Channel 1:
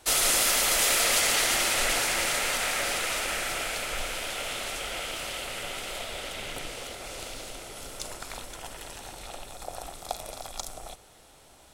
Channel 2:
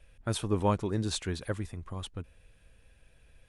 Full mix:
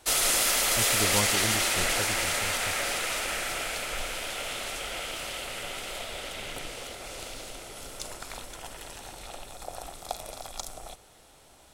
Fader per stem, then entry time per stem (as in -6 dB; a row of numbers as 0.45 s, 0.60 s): -1.0 dB, -3.5 dB; 0.00 s, 0.50 s